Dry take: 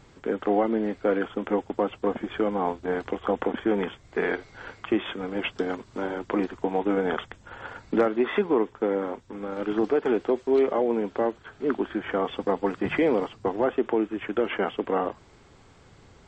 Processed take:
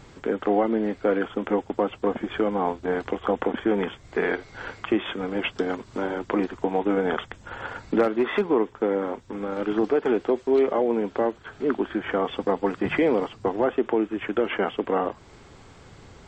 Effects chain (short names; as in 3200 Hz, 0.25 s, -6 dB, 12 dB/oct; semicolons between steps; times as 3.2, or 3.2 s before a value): in parallel at -1 dB: compressor, threshold -36 dBFS, peak gain reduction 18 dB; 8.03–8.43 on the sum: hard clip -15.5 dBFS, distortion -32 dB